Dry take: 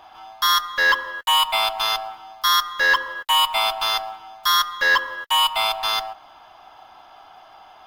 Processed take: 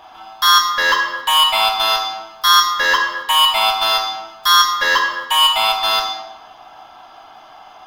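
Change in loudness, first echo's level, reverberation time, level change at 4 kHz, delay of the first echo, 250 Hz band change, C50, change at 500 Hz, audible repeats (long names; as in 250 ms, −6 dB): +5.5 dB, no echo audible, 1.1 s, +6.0 dB, no echo audible, +7.5 dB, 6.0 dB, +5.0 dB, no echo audible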